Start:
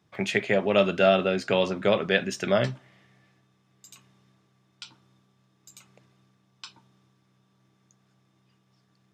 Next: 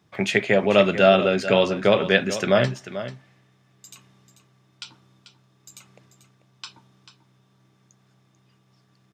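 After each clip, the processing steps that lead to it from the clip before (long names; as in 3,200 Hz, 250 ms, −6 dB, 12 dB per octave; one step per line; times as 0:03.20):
single-tap delay 440 ms −12.5 dB
level +4.5 dB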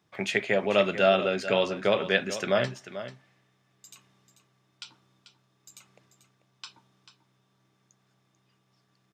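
low-shelf EQ 250 Hz −6.5 dB
level −5 dB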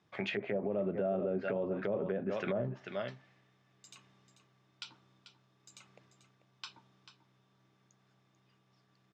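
Bessel low-pass filter 5,000 Hz, order 2
treble cut that deepens with the level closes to 530 Hz, closed at −22.5 dBFS
brickwall limiter −24 dBFS, peak gain reduction 9.5 dB
level −1 dB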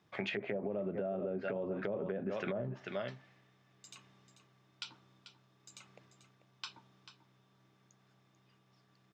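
downward compressor, threshold −35 dBFS, peak gain reduction 6.5 dB
level +1.5 dB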